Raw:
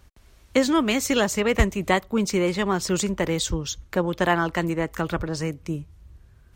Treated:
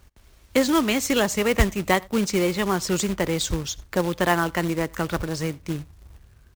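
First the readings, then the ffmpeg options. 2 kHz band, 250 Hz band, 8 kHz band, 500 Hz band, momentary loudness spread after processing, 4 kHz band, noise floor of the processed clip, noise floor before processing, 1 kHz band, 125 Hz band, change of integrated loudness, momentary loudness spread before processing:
+0.5 dB, 0.0 dB, +1.0 dB, 0.0 dB, 8 LU, +1.0 dB, -55 dBFS, -55 dBFS, +0.5 dB, 0.0 dB, +0.5 dB, 8 LU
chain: -filter_complex "[0:a]acrusher=bits=3:mode=log:mix=0:aa=0.000001,asplit=2[a][b];[b]adelay=87.46,volume=-26dB,highshelf=f=4k:g=-1.97[c];[a][c]amix=inputs=2:normalize=0"

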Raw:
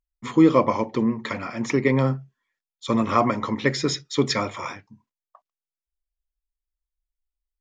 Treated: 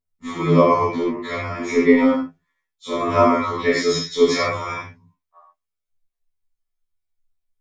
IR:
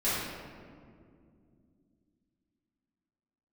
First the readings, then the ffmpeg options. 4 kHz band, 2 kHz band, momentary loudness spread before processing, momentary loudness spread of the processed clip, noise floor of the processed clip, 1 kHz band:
+2.5 dB, +4.5 dB, 15 LU, 13 LU, -81 dBFS, +4.5 dB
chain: -filter_complex "[1:a]atrim=start_sample=2205,afade=t=out:st=0.2:d=0.01,atrim=end_sample=9261[a];[0:a][a]afir=irnorm=-1:irlink=0,afftfilt=real='re*2*eq(mod(b,4),0)':imag='im*2*eq(mod(b,4),0)':win_size=2048:overlap=0.75,volume=-3dB"

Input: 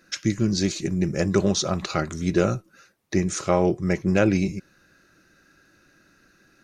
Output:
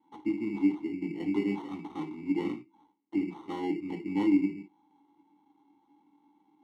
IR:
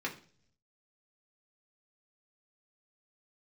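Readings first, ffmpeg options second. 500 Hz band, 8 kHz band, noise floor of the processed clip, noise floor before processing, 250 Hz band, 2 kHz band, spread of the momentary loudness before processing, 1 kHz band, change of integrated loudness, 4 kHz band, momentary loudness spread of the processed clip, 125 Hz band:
-14.0 dB, under -30 dB, -70 dBFS, -61 dBFS, -4.5 dB, -12.5 dB, 7 LU, -11.0 dB, -8.0 dB, -19.5 dB, 12 LU, -19.5 dB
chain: -filter_complex "[1:a]atrim=start_sample=2205,atrim=end_sample=3969[a];[0:a][a]afir=irnorm=-1:irlink=0,acrusher=samples=18:mix=1:aa=0.000001,asplit=3[b][c][d];[b]bandpass=f=300:t=q:w=8,volume=0dB[e];[c]bandpass=f=870:t=q:w=8,volume=-6dB[f];[d]bandpass=f=2.24k:t=q:w=8,volume=-9dB[g];[e][f][g]amix=inputs=3:normalize=0,volume=-2.5dB"

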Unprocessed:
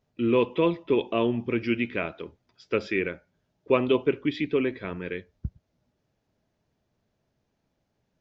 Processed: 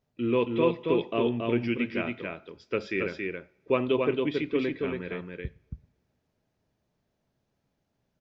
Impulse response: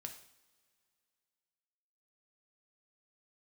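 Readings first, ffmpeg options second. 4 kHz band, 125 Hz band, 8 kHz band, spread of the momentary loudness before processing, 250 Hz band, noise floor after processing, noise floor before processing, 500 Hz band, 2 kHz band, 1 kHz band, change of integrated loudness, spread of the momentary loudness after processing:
-2.0 dB, -1.0 dB, n/a, 16 LU, -1.5 dB, -78 dBFS, -77 dBFS, -1.5 dB, -2.0 dB, -1.5 dB, -2.0 dB, 15 LU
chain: -filter_complex "[0:a]aecho=1:1:276:0.668,asplit=2[a][b];[1:a]atrim=start_sample=2205[c];[b][c]afir=irnorm=-1:irlink=0,volume=-8.5dB[d];[a][d]amix=inputs=2:normalize=0,volume=-5dB"

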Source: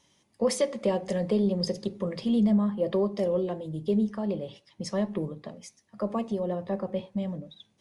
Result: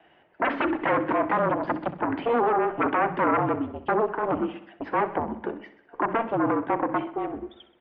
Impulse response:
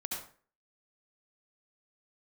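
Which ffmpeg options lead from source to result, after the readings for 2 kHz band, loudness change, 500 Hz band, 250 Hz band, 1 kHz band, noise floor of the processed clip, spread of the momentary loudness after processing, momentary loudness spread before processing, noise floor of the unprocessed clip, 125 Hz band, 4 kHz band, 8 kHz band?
+16.5 dB, +3.0 dB, +2.0 dB, -1.5 dB, +16.5 dB, -59 dBFS, 10 LU, 14 LU, -69 dBFS, -4.0 dB, n/a, under -35 dB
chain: -filter_complex "[0:a]aeval=exprs='0.188*sin(PI/2*5.01*val(0)/0.188)':c=same,acrossover=split=470 2200:gain=0.0891 1 0.126[a][b][c];[a][b][c]amix=inputs=3:normalize=0,asplit=2[d][e];[e]aecho=0:1:64|128|192|256|320|384:0.188|0.107|0.0612|0.0349|0.0199|0.0113[f];[d][f]amix=inputs=2:normalize=0,highpass=f=350:t=q:w=0.5412,highpass=f=350:t=q:w=1.307,lowpass=f=3.3k:t=q:w=0.5176,lowpass=f=3.3k:t=q:w=0.7071,lowpass=f=3.3k:t=q:w=1.932,afreqshift=-230,volume=-1.5dB"

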